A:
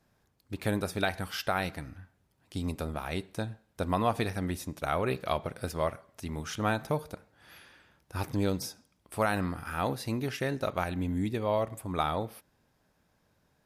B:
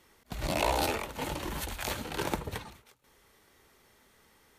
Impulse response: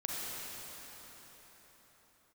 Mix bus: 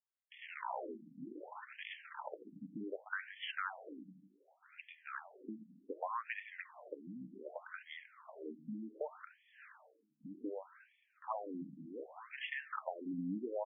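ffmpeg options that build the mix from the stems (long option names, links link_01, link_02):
-filter_complex "[0:a]adelay=2100,volume=-0.5dB,asplit=2[link_01][link_02];[link_02]volume=-20.5dB[link_03];[1:a]volume=-5dB[link_04];[2:a]atrim=start_sample=2205[link_05];[link_03][link_05]afir=irnorm=-1:irlink=0[link_06];[link_01][link_04][link_06]amix=inputs=3:normalize=0,agate=range=-33dB:threshold=-48dB:ratio=3:detection=peak,acrossover=split=220|1100|3300[link_07][link_08][link_09][link_10];[link_07]acompressor=threshold=-44dB:ratio=4[link_11];[link_08]acompressor=threshold=-39dB:ratio=4[link_12];[link_09]acompressor=threshold=-37dB:ratio=4[link_13];[link_10]acompressor=threshold=-49dB:ratio=4[link_14];[link_11][link_12][link_13][link_14]amix=inputs=4:normalize=0,afftfilt=real='re*between(b*sr/1024,210*pow(2500/210,0.5+0.5*sin(2*PI*0.66*pts/sr))/1.41,210*pow(2500/210,0.5+0.5*sin(2*PI*0.66*pts/sr))*1.41)':imag='im*between(b*sr/1024,210*pow(2500/210,0.5+0.5*sin(2*PI*0.66*pts/sr))/1.41,210*pow(2500/210,0.5+0.5*sin(2*PI*0.66*pts/sr))*1.41)':win_size=1024:overlap=0.75"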